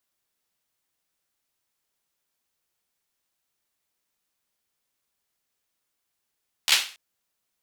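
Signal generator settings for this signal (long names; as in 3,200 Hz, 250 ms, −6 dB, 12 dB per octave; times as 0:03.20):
synth clap length 0.28 s, apart 13 ms, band 3,000 Hz, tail 0.38 s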